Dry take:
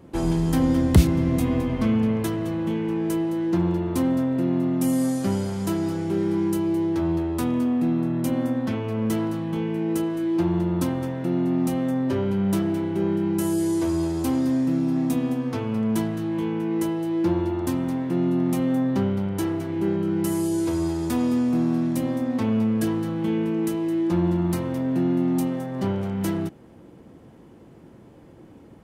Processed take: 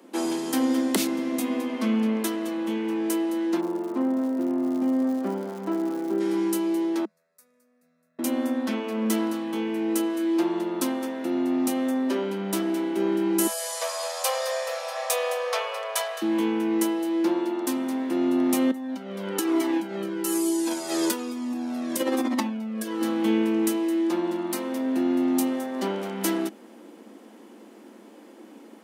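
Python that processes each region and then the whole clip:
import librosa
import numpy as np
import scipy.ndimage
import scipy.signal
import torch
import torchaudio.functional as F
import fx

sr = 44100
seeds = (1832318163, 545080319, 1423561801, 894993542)

y = fx.lowpass(x, sr, hz=1300.0, slope=12, at=(3.6, 6.19), fade=0.02)
y = fx.dmg_crackle(y, sr, seeds[0], per_s=170.0, level_db=-40.0, at=(3.6, 6.19), fade=0.02)
y = fx.chain(y, sr, fx.cheby1_bandstop(low_hz=200.0, high_hz=570.0, order=2),
    fx.tone_stack(knobs='10-0-1'),
    fx.fixed_phaser(hz=840.0, stages=6), at=(7.05, 8.19))
y = fx.chain(y, sr, fx.brickwall_highpass(low_hz=460.0),
    fx.high_shelf(hz=11000.0, db=-6.5),
    fx.comb(ms=1.7, depth=0.37), at=(13.47, 16.22))
y = fx.chain(y, sr, fx.over_compress(threshold_db=-26.0, ratio=-0.5),
    fx.comb_cascade(direction='falling', hz=1.1), at=(18.71, 23.02))
y = scipy.signal.sosfilt(scipy.signal.cheby1(6, 1.0, 210.0, 'highpass', fs=sr, output='sos'), y)
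y = fx.high_shelf(y, sr, hz=2100.0, db=8.0)
y = fx.rider(y, sr, range_db=10, speed_s=2.0)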